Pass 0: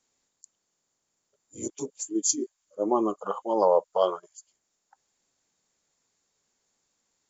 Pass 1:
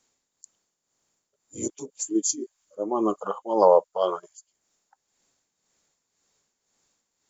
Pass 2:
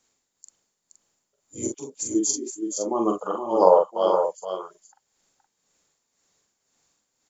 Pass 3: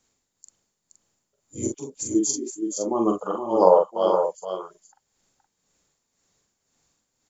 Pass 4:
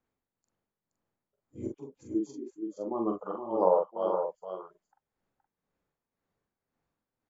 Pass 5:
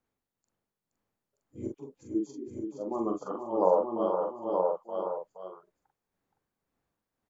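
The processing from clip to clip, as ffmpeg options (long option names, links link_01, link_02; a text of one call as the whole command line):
ffmpeg -i in.wav -af "tremolo=f=1.9:d=0.64,volume=5dB" out.wav
ffmpeg -i in.wav -filter_complex "[0:a]asplit=2[link_01][link_02];[link_02]adelay=43,volume=-4dB[link_03];[link_01][link_03]amix=inputs=2:normalize=0,aecho=1:1:471:0.447" out.wav
ffmpeg -i in.wav -af "lowshelf=frequency=210:gain=9,volume=-1dB" out.wav
ffmpeg -i in.wav -af "lowpass=1800,volume=-8.5dB" out.wav
ffmpeg -i in.wav -af "aecho=1:1:926:0.631" out.wav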